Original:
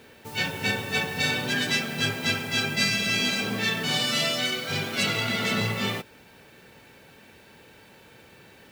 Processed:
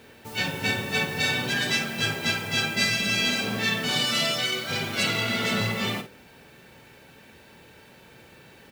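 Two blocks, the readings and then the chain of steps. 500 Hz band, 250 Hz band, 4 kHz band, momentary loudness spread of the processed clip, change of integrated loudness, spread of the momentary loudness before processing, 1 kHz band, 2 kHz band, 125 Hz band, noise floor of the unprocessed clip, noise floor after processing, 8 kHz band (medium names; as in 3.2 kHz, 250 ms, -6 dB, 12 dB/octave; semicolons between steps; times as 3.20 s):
0.0 dB, 0.0 dB, +0.5 dB, 6 LU, +0.5 dB, 5 LU, +0.5 dB, +0.5 dB, 0.0 dB, -53 dBFS, -52 dBFS, +0.5 dB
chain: bass shelf 350 Hz +2.5 dB; hum notches 50/100/150/200/250/300/350/400/450/500 Hz; doubling 50 ms -9.5 dB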